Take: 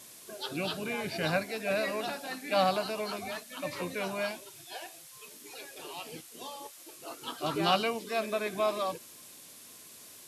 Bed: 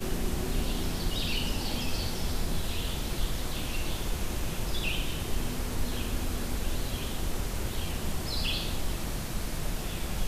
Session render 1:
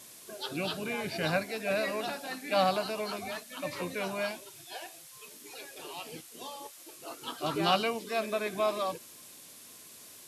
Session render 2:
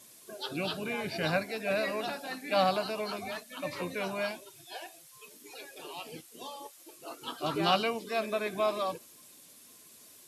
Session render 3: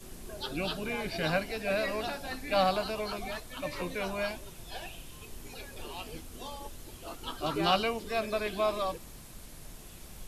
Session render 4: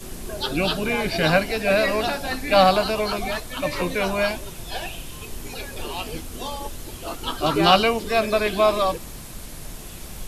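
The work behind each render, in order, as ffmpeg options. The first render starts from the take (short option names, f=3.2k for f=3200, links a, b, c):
-af anull
-af "afftdn=nr=6:nf=-52"
-filter_complex "[1:a]volume=-16dB[a];[0:a][a]amix=inputs=2:normalize=0"
-af "volume=11dB"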